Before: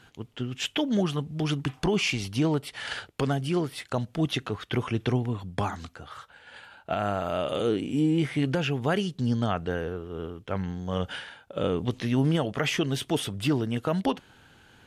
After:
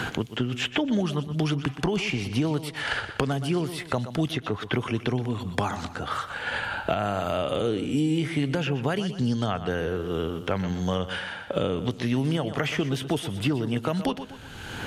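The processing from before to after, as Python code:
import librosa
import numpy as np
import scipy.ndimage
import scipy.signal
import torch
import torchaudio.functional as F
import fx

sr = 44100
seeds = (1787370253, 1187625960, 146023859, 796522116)

p1 = x + fx.echo_feedback(x, sr, ms=122, feedback_pct=27, wet_db=-13.5, dry=0)
y = fx.band_squash(p1, sr, depth_pct=100)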